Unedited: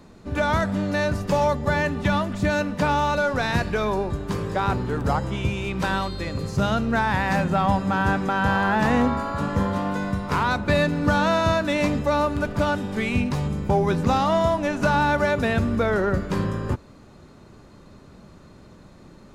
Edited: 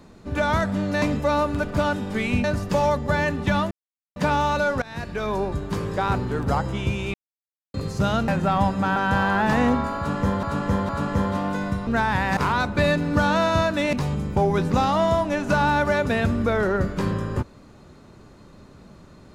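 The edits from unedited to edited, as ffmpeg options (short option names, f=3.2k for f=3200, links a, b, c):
-filter_complex "[0:a]asplit=15[a][b][c][d][e][f][g][h][i][j][k][l][m][n][o];[a]atrim=end=1.022[p];[b]atrim=start=11.838:end=13.262[q];[c]atrim=start=1.018:end=2.29,asetpts=PTS-STARTPTS,afade=t=out:st=1.268:d=0.004:c=hsin[r];[d]atrim=start=2.29:end=2.74,asetpts=PTS-STARTPTS,volume=0[s];[e]atrim=start=2.74:end=3.4,asetpts=PTS-STARTPTS,afade=t=in:d=0.004:c=hsin,afade=t=out:st=0.656:d=0.004:c=hsin:silence=0.0841395[t];[f]atrim=start=3.4:end=5.72,asetpts=PTS-STARTPTS,afade=t=in:d=0.61:silence=0.0841395,afade=t=out:st=2.316:d=0.004:c=hsin[u];[g]atrim=start=5.72:end=6.32,asetpts=PTS-STARTPTS,volume=0[v];[h]atrim=start=6.32:end=6.862,asetpts=PTS-STARTPTS,afade=t=in:d=0.004:c=hsin[w];[i]atrim=start=7.358:end=8.042[x];[j]atrim=start=8.288:end=9.762[y];[k]atrim=start=9.298:end=9.762[z];[l]atrim=start=9.298:end=10.282[aa];[m]atrim=start=6.858:end=7.362[ab];[n]atrim=start=10.278:end=11.842[ac];[o]atrim=start=13.258[ad];[p][q]acrossfade=d=0.004:c1=hsin:c2=hsin[ae];[r][s][t][u][v][w]concat=n=6:v=0:a=1[af];[ae][af]acrossfade=d=0.004:c1=hsin:c2=hsin[ag];[ag][x]acrossfade=d=0.004:c1=hsin:c2=hsin[ah];[ah][y]acrossfade=d=0.004:c1=hsin:c2=hsin[ai];[ai][z]acrossfade=d=0.004:c1=hsin:c2=hsin[aj];[aj][aa]acrossfade=d=0.004:c1=hsin:c2=hsin[ak];[ak][ab]acrossfade=d=0.004:c1=hsin:c2=hsin[al];[al][ac]acrossfade=d=0.004:c1=hsin:c2=hsin[am];[am][ad]acrossfade=d=0.004:c1=hsin:c2=hsin"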